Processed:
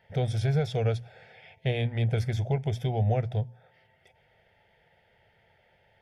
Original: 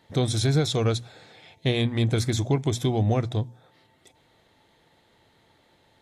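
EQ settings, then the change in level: dynamic bell 2 kHz, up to -5 dB, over -47 dBFS, Q 0.83; resonant high shelf 5.6 kHz -10 dB, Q 3; static phaser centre 1.1 kHz, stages 6; 0.0 dB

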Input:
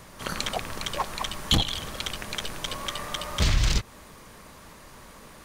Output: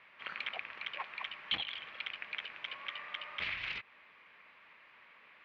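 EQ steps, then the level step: band-pass filter 2.4 kHz, Q 3.1; distance through air 390 m; +4.0 dB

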